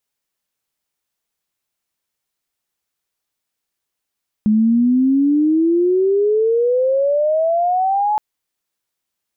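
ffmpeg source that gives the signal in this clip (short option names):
-f lavfi -i "aevalsrc='pow(10,(-10.5-3.5*t/3.72)/20)*sin(2*PI*210*3.72/log(860/210)*(exp(log(860/210)*t/3.72)-1))':d=3.72:s=44100"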